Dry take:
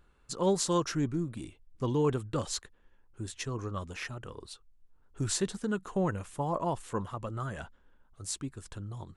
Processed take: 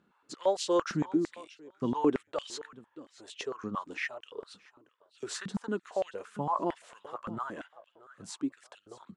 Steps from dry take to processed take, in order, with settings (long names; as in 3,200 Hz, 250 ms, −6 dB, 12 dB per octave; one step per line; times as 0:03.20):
high-frequency loss of the air 66 metres
on a send: repeating echo 630 ms, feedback 22%, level −18 dB
on the sum: high-pass on a step sequencer 8.8 Hz 200–2,900 Hz
level −3 dB